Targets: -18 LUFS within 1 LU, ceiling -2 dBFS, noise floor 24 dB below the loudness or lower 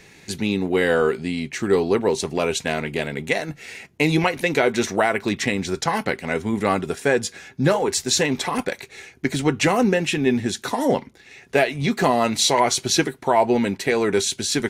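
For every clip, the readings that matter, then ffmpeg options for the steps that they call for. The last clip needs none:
loudness -21.5 LUFS; peak level -6.5 dBFS; loudness target -18.0 LUFS
-> -af "volume=1.5"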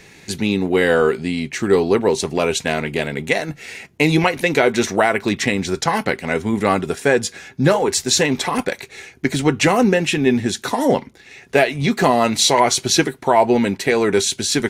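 loudness -18.0 LUFS; peak level -3.0 dBFS; noise floor -46 dBFS

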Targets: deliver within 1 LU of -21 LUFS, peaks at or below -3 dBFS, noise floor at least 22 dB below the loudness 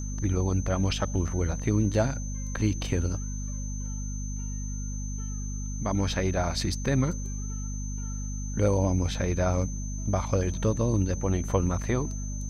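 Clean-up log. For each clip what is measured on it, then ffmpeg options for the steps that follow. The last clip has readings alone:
hum 50 Hz; highest harmonic 250 Hz; hum level -31 dBFS; steady tone 6.2 kHz; tone level -41 dBFS; loudness -29.0 LUFS; peak level -11.0 dBFS; loudness target -21.0 LUFS
-> -af "bandreject=f=50:t=h:w=6,bandreject=f=100:t=h:w=6,bandreject=f=150:t=h:w=6,bandreject=f=200:t=h:w=6,bandreject=f=250:t=h:w=6"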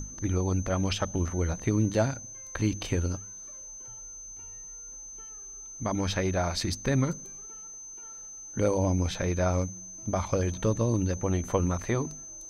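hum not found; steady tone 6.2 kHz; tone level -41 dBFS
-> -af "bandreject=f=6200:w=30"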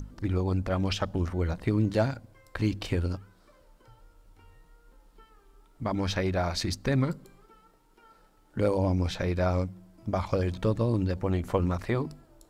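steady tone not found; loudness -29.5 LUFS; peak level -12.5 dBFS; loudness target -21.0 LUFS
-> -af "volume=2.66"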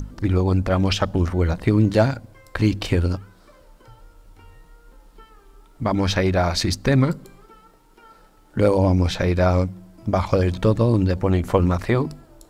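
loudness -21.0 LUFS; peak level -4.0 dBFS; noise floor -53 dBFS

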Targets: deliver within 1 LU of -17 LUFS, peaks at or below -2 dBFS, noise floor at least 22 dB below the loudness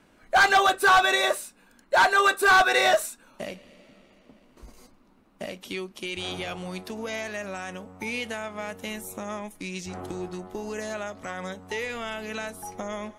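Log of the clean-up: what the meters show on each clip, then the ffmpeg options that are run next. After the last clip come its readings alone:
loudness -25.0 LUFS; peak level -13.0 dBFS; loudness target -17.0 LUFS
-> -af "volume=2.51"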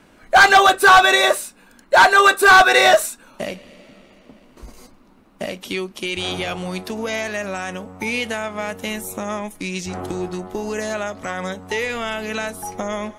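loudness -17.0 LUFS; peak level -5.0 dBFS; noise floor -51 dBFS

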